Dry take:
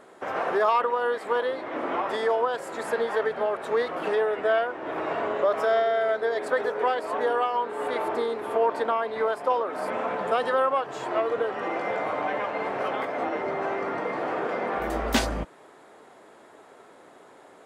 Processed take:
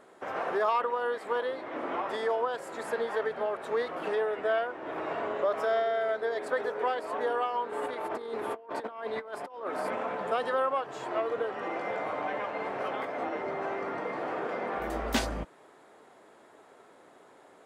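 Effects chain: 7.72–10.03 s: compressor with a negative ratio -30 dBFS, ratio -0.5; trim -5 dB

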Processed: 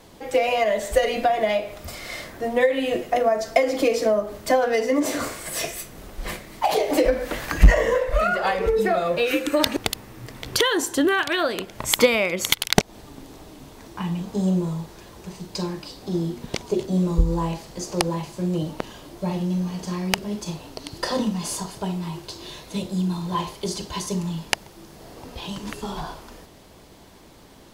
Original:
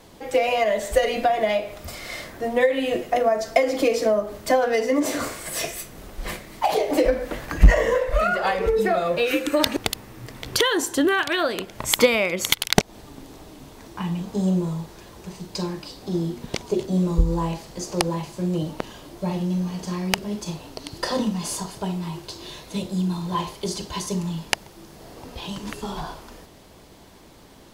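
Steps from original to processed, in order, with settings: 6.71–7.73 s: tape noise reduction on one side only encoder only

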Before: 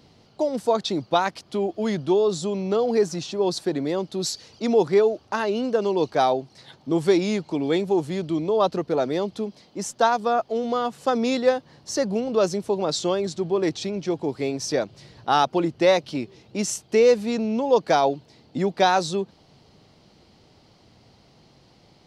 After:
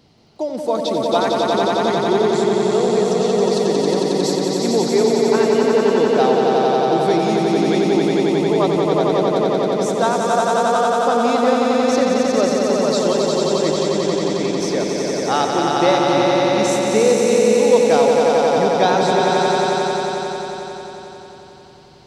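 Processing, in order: echo with a slow build-up 90 ms, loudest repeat 5, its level -3.5 dB

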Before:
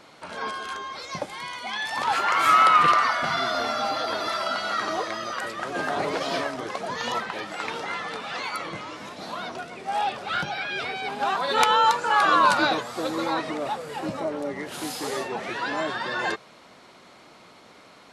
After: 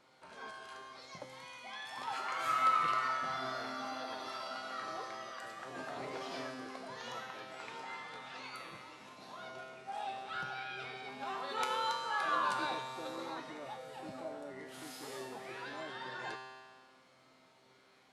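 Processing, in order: feedback comb 130 Hz, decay 1.7 s, mix 90%; trim +1 dB

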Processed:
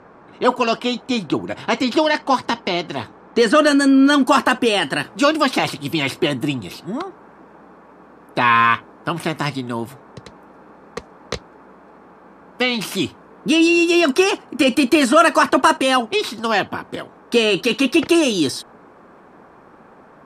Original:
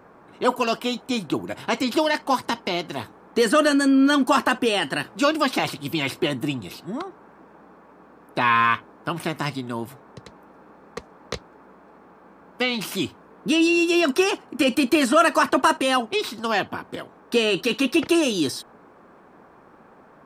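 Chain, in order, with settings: low-pass 6.5 kHz 12 dB/octave, from 3.67 s 12 kHz; trim +4.5 dB

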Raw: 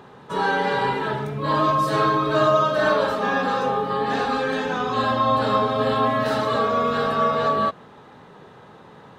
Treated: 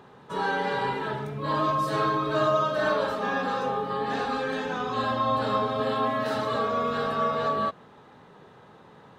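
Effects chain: 5.80–6.36 s: high-pass 130 Hz; trim -5.5 dB

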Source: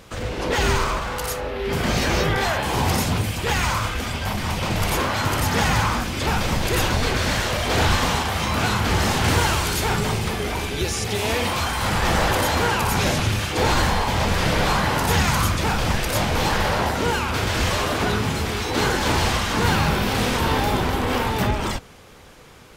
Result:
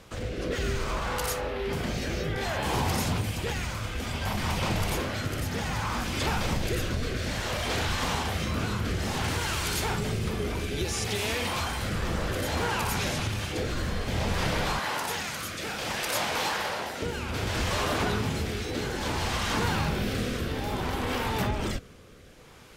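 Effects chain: 14.79–17.02 s: high-pass 660 Hz 6 dB/octave; compression, threshold -21 dBFS, peak gain reduction 7.5 dB; rotary cabinet horn 0.6 Hz; trim -2 dB

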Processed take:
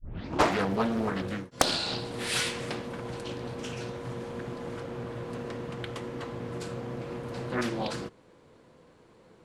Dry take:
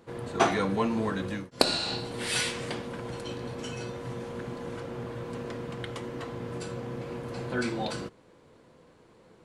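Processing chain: tape start-up on the opening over 0.48 s; loudspeaker Doppler distortion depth 0.99 ms

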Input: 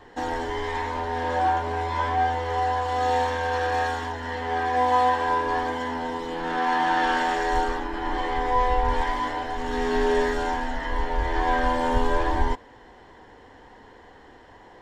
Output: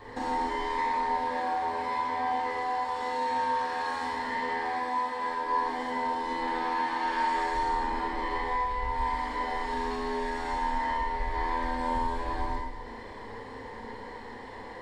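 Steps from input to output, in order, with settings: rippled EQ curve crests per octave 0.94, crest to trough 8 dB; compression 4:1, threshold -35 dBFS, peak gain reduction 17 dB; Schroeder reverb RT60 1.2 s, combs from 27 ms, DRR -4.5 dB

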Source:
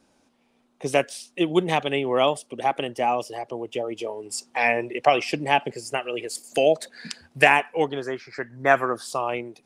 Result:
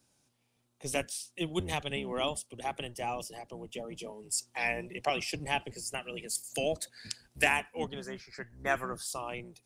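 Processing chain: octave divider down 1 oct, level +2 dB; pre-emphasis filter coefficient 0.8

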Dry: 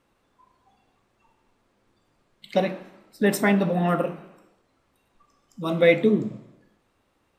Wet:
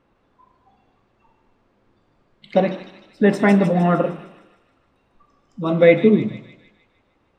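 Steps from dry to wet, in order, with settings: tape spacing loss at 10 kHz 22 dB; feedback echo behind a high-pass 153 ms, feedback 53%, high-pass 3.7 kHz, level -3 dB; trim +6.5 dB

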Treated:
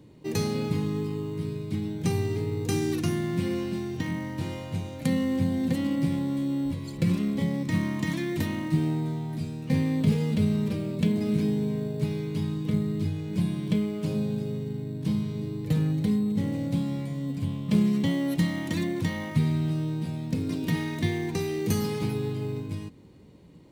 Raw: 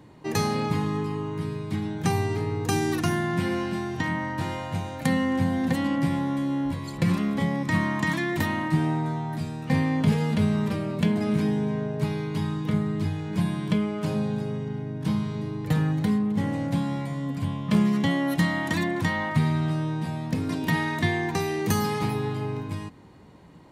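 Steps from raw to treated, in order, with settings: high-order bell 1.1 kHz -9.5 dB; in parallel at -10 dB: sample-and-hold 11×; on the sum: trim -3.5 dB

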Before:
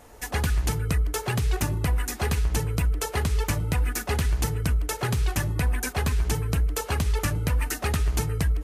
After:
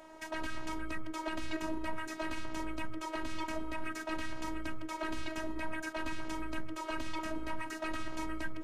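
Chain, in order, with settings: frequency weighting A; peak limiter -27 dBFS, peak gain reduction 11.5 dB; RIAA curve playback; robot voice 318 Hz; trim +2 dB

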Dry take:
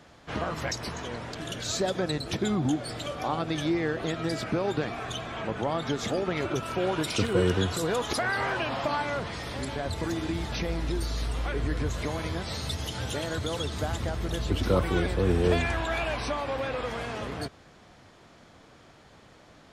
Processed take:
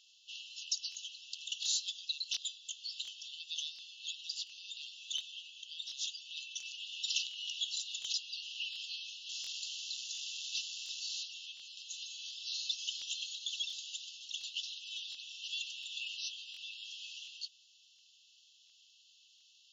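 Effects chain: 9.29–11.23 s: word length cut 6-bit, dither none; brick-wall FIR band-pass 2.6–7.3 kHz; crackling interface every 0.71 s, samples 1024, repeat, from 0.90 s

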